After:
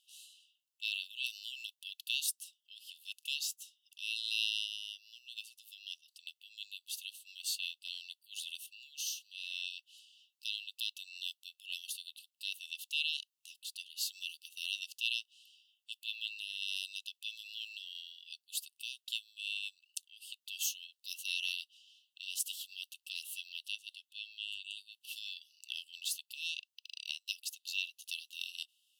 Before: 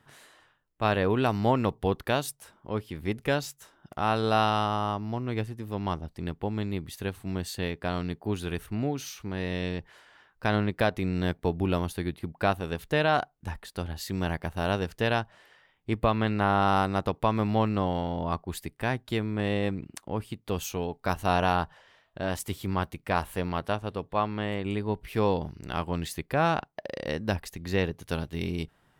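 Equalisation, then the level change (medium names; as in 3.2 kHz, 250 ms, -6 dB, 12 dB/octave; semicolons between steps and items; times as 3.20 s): brick-wall FIR high-pass 2.6 kHz; +2.5 dB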